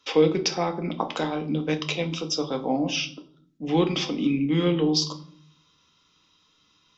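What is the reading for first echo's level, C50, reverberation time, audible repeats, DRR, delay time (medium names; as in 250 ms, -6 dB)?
no echo, 14.5 dB, 0.55 s, no echo, 6.0 dB, no echo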